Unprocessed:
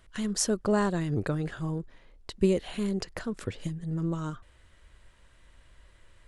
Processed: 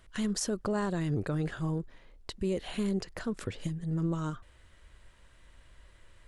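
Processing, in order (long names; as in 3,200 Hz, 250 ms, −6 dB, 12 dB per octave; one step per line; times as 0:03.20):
brickwall limiter −22.5 dBFS, peak gain reduction 11.5 dB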